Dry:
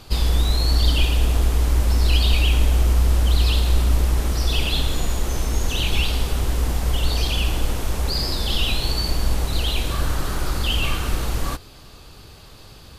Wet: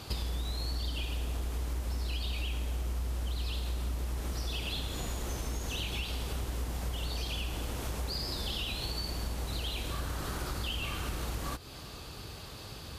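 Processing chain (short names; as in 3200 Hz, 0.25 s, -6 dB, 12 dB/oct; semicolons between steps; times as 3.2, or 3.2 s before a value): HPF 49 Hz; compressor, threshold -33 dBFS, peak gain reduction 17 dB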